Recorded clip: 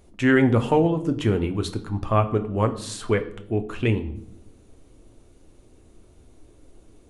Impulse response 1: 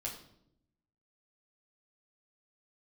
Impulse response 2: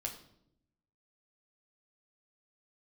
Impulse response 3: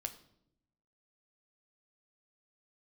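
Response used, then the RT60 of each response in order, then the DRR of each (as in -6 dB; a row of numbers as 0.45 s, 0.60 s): 3; 0.75 s, 0.75 s, 0.75 s; -3.0 dB, 1.0 dB, 6.5 dB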